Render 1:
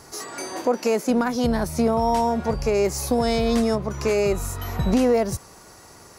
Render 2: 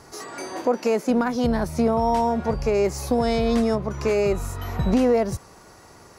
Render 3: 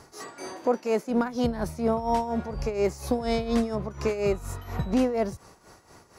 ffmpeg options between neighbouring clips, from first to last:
-af "highshelf=f=5k:g=-8"
-af "tremolo=f=4.2:d=0.71,volume=-2dB"

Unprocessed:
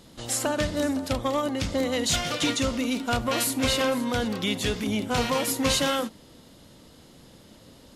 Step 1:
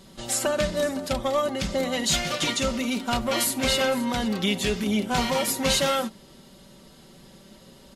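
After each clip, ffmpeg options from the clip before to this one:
-af "aecho=1:1:5.2:0.64"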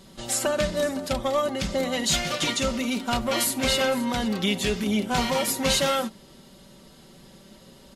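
-af anull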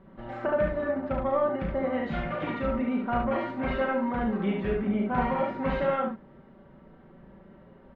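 -filter_complex "[0:a]lowpass=f=1.8k:w=0.5412,lowpass=f=1.8k:w=1.3066,asplit=2[a][b];[b]aecho=0:1:35|71:0.562|0.668[c];[a][c]amix=inputs=2:normalize=0,volume=-3.5dB"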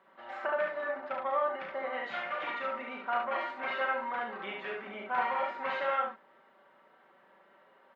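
-af "highpass=890,volume=1.5dB"

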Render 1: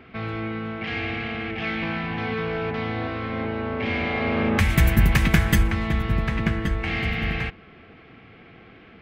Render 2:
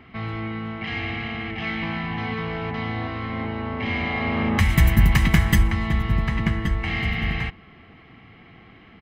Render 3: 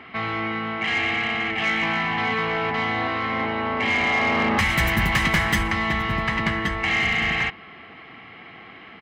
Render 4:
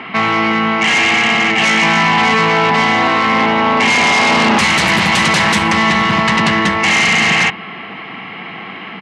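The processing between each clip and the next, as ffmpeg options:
-af "aecho=1:1:1:0.43,volume=-1dB"
-filter_complex "[0:a]asplit=2[a][b];[b]highpass=f=720:p=1,volume=24dB,asoftclip=type=tanh:threshold=-1dB[c];[a][c]amix=inputs=2:normalize=0,lowpass=f=3.7k:p=1,volume=-6dB,volume=-8dB"
-af "aeval=exprs='0.335*sin(PI/2*3.16*val(0)/0.335)':c=same,highpass=f=100:w=0.5412,highpass=f=100:w=1.3066,equalizer=f=110:t=q:w=4:g=-5,equalizer=f=190:t=q:w=4:g=7,equalizer=f=950:t=q:w=4:g=6,equalizer=f=2.7k:t=q:w=4:g=4,lowpass=f=9.9k:w=0.5412,lowpass=f=9.9k:w=1.3066,volume=-1dB"

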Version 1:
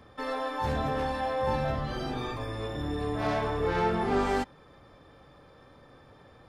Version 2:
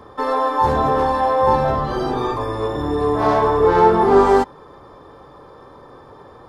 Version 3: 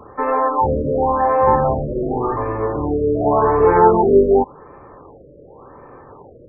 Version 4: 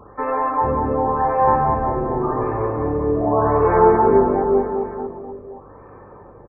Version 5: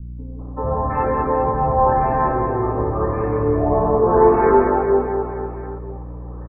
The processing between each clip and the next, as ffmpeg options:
-af "equalizer=f=400:t=o:w=0.67:g=9,equalizer=f=1k:t=o:w=0.67:g=11,equalizer=f=2.5k:t=o:w=0.67:g=-6,volume=7dB"
-af "afftfilt=real='re*lt(b*sr/1024,610*pow(2700/610,0.5+0.5*sin(2*PI*0.89*pts/sr)))':imag='im*lt(b*sr/1024,610*pow(2700/610,0.5+0.5*sin(2*PI*0.89*pts/sr)))':win_size=1024:overlap=0.75,volume=1.5dB"
-filter_complex "[0:a]aeval=exprs='val(0)+0.00398*(sin(2*PI*50*n/s)+sin(2*PI*2*50*n/s)/2+sin(2*PI*3*50*n/s)/3+sin(2*PI*4*50*n/s)/4+sin(2*PI*5*50*n/s)/5)':c=same,asplit=2[a][b];[b]aecho=0:1:190|399|628.9|881.8|1160:0.631|0.398|0.251|0.158|0.1[c];[a][c]amix=inputs=2:normalize=0,volume=-3.5dB"
-filter_complex "[0:a]aeval=exprs='val(0)+0.0251*(sin(2*PI*60*n/s)+sin(2*PI*2*60*n/s)/2+sin(2*PI*3*60*n/s)/3+sin(2*PI*4*60*n/s)/4+sin(2*PI*5*60*n/s)/5)':c=same,acrossover=split=240|1000[a][b][c];[b]adelay=390[d];[c]adelay=720[e];[a][d][e]amix=inputs=3:normalize=0,volume=2dB"

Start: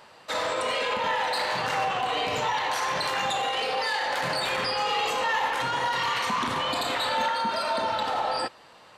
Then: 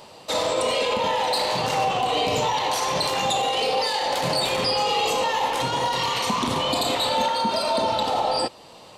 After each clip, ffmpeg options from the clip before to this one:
-filter_complex "[0:a]asplit=2[a][b];[b]alimiter=limit=-23dB:level=0:latency=1:release=307,volume=-1dB[c];[a][c]amix=inputs=2:normalize=0,equalizer=f=1.6k:t=o:w=1.1:g=-14,volume=4.5dB"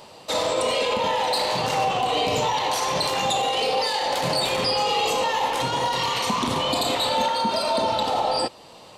-af anull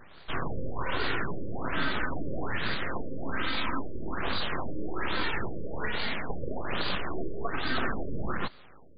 -af "aeval=exprs='abs(val(0))':c=same,afftfilt=real='re*lt(b*sr/1024,590*pow(4900/590,0.5+0.5*sin(2*PI*1.2*pts/sr)))':imag='im*lt(b*sr/1024,590*pow(4900/590,0.5+0.5*sin(2*PI*1.2*pts/sr)))':win_size=1024:overlap=0.75,volume=-3dB"

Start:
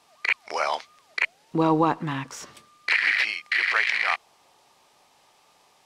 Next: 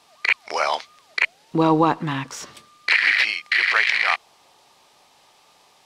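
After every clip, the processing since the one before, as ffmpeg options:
-af "equalizer=f=3.9k:w=1.5:g=3,volume=3.5dB"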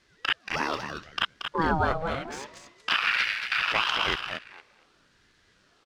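-af "aecho=1:1:230|460|690:0.447|0.0849|0.0161,adynamicsmooth=sensitivity=7.5:basefreq=6.7k,aeval=exprs='val(0)*sin(2*PI*590*n/s+590*0.45/0.75*sin(2*PI*0.75*n/s))':c=same,volume=-4.5dB"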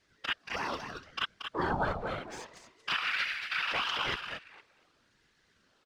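-af "afftfilt=real='hypot(re,im)*cos(2*PI*random(0))':imag='hypot(re,im)*sin(2*PI*random(1))':win_size=512:overlap=0.75"

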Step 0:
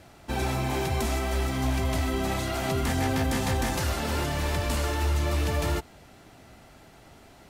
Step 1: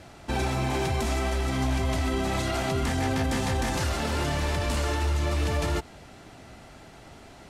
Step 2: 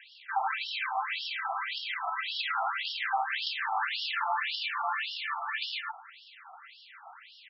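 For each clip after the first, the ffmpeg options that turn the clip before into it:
-af "lowpass=10k,alimiter=limit=-23dB:level=0:latency=1:release=67,volume=4dB"
-af "aecho=1:1:109|218|327:0.631|0.0946|0.0142,afftfilt=real='re*between(b*sr/1024,960*pow(4000/960,0.5+0.5*sin(2*PI*1.8*pts/sr))/1.41,960*pow(4000/960,0.5+0.5*sin(2*PI*1.8*pts/sr))*1.41)':imag='im*between(b*sr/1024,960*pow(4000/960,0.5+0.5*sin(2*PI*1.8*pts/sr))/1.41,960*pow(4000/960,0.5+0.5*sin(2*PI*1.8*pts/sr))*1.41)':win_size=1024:overlap=0.75,volume=5dB"

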